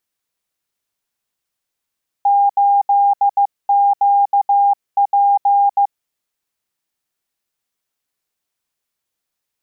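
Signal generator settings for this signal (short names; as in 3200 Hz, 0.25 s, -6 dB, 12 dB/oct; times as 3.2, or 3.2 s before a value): Morse "8QP" 15 wpm 805 Hz -9.5 dBFS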